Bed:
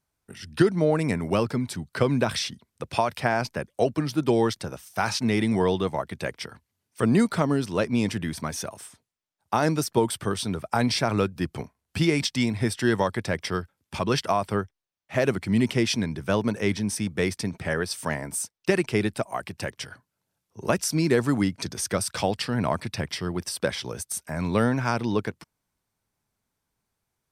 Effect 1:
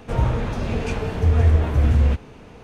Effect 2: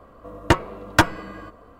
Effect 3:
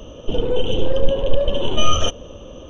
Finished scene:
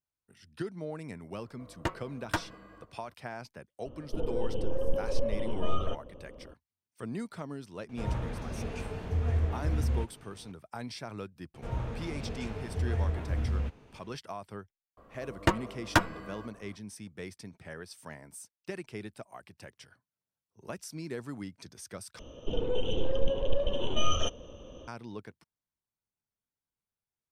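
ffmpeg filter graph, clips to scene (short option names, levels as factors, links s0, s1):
-filter_complex "[2:a]asplit=2[s0][s1];[3:a]asplit=2[s2][s3];[1:a]asplit=2[s4][s5];[0:a]volume=0.141[s6];[s2]lowpass=1500[s7];[s6]asplit=2[s8][s9];[s8]atrim=end=22.194[s10];[s3]atrim=end=2.69,asetpts=PTS-STARTPTS,volume=0.299[s11];[s9]atrim=start=24.876[s12];[s0]atrim=end=1.79,asetpts=PTS-STARTPTS,volume=0.168,afade=t=in:d=0.004:c=hsin,afade=t=out:st=1.786:d=0.004:c=hsin,adelay=1350[s13];[s7]atrim=end=2.69,asetpts=PTS-STARTPTS,volume=0.251,afade=t=in:d=0.004:c=hsin,afade=t=out:st=2.686:d=0.004:c=hsin,adelay=169785S[s14];[s4]atrim=end=2.63,asetpts=PTS-STARTPTS,volume=0.237,afade=t=in:d=0.004:c=hsin,afade=t=out:st=2.626:d=0.004:c=hsin,adelay=7890[s15];[s5]atrim=end=2.63,asetpts=PTS-STARTPTS,volume=0.2,afade=t=in:d=0.004:c=hsin,afade=t=out:st=2.626:d=0.004:c=hsin,adelay=508914S[s16];[s1]atrim=end=1.79,asetpts=PTS-STARTPTS,volume=0.398,afade=t=in:d=0.004:c=hsin,afade=t=out:st=1.786:d=0.004:c=hsin,adelay=14970[s17];[s10][s11]acrossfade=d=0.004:c1=hsin:c2=hsin[s18];[s18][s12]acrossfade=d=0.004:c1=hsin:c2=hsin[s19];[s19][s13][s14][s15][s16][s17]amix=inputs=6:normalize=0"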